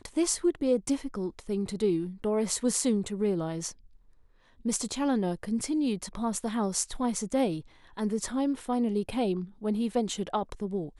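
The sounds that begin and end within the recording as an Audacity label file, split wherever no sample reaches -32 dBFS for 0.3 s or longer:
4.650000	7.590000	sound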